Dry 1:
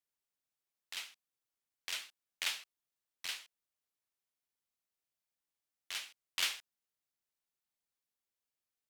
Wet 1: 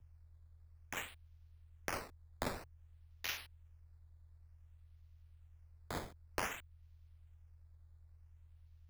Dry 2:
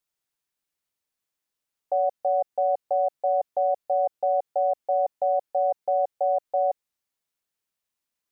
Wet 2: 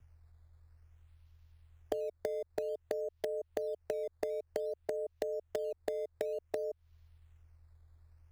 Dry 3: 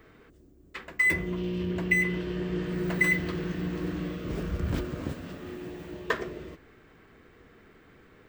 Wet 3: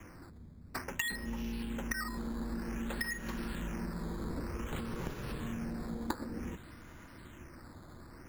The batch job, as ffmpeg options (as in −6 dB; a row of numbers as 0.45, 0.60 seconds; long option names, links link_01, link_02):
-filter_complex "[0:a]aeval=exprs='val(0)+0.000708*(sin(2*PI*50*n/s)+sin(2*PI*2*50*n/s)/2+sin(2*PI*3*50*n/s)/3+sin(2*PI*4*50*n/s)/4+sin(2*PI*5*50*n/s)/5)':channel_layout=same,acrossover=split=350|1900|3800[link_01][link_02][link_03][link_04];[link_01]acompressor=threshold=-39dB:ratio=4[link_05];[link_02]acompressor=threshold=-26dB:ratio=4[link_06];[link_03]acompressor=threshold=-34dB:ratio=4[link_07];[link_04]acompressor=threshold=-58dB:ratio=4[link_08];[link_05][link_06][link_07][link_08]amix=inputs=4:normalize=0,acrossover=split=1200[link_09][link_10];[link_10]acrusher=samples=10:mix=1:aa=0.000001:lfo=1:lforange=10:lforate=0.54[link_11];[link_09][link_11]amix=inputs=2:normalize=0,acompressor=threshold=-38dB:ratio=12,asplit=2[link_12][link_13];[link_13]acrusher=bits=4:mix=0:aa=0.000001,volume=-10dB[link_14];[link_12][link_14]amix=inputs=2:normalize=0,afreqshift=-130,volume=4dB"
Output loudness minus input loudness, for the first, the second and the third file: −4.0, −13.5, −9.5 LU